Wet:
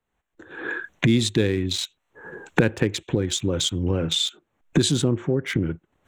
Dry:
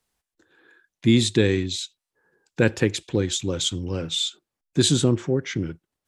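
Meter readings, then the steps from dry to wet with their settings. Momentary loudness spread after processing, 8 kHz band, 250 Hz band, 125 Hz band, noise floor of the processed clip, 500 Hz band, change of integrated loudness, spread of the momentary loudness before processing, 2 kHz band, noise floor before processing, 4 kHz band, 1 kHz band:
11 LU, -1.0 dB, -0.5 dB, +0.5 dB, -77 dBFS, -0.5 dB, -0.5 dB, 11 LU, +2.0 dB, under -85 dBFS, +0.5 dB, +4.0 dB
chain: Wiener smoothing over 9 samples; recorder AGC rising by 44 dB/s; gain -2 dB

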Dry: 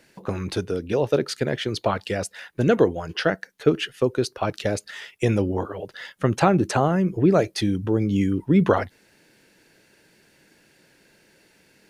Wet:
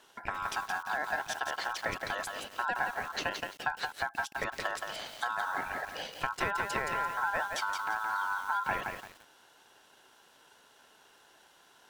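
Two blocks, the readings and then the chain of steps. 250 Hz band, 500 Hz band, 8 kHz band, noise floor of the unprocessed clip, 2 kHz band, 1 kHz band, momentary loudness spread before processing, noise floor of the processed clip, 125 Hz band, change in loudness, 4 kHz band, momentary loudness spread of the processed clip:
-27.0 dB, -19.0 dB, -6.5 dB, -60 dBFS, +0.5 dB, -3.0 dB, 10 LU, -62 dBFS, -26.5 dB, -10.5 dB, -7.0 dB, 5 LU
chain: compressor 3:1, threshold -31 dBFS, peak gain reduction 14.5 dB; ring modulator 1200 Hz; lo-fi delay 0.171 s, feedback 35%, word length 8-bit, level -4 dB

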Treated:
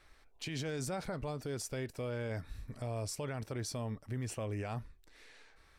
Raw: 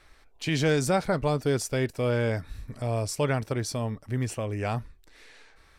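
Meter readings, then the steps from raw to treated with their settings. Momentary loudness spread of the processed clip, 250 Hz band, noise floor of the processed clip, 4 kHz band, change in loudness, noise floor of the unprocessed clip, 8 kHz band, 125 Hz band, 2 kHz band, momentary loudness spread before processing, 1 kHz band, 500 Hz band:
8 LU, -12.0 dB, -64 dBFS, -10.0 dB, -11.5 dB, -58 dBFS, -8.0 dB, -10.5 dB, -13.0 dB, 9 LU, -13.0 dB, -13.0 dB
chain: limiter -24.5 dBFS, peak gain reduction 11 dB; gain -6 dB

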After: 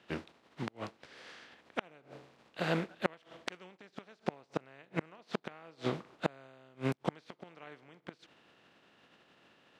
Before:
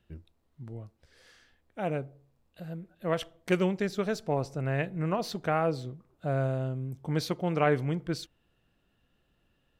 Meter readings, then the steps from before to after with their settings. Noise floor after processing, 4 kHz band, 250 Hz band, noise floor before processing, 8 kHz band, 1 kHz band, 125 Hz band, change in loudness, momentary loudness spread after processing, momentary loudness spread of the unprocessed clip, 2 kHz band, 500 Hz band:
-70 dBFS, -5.0 dB, -8.0 dB, -73 dBFS, -10.5 dB, -8.0 dB, -12.0 dB, -9.0 dB, 18 LU, 18 LU, -5.0 dB, -9.5 dB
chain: spectral contrast lowered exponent 0.53; flipped gate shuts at -23 dBFS, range -35 dB; BPF 190–3400 Hz; gain +9.5 dB

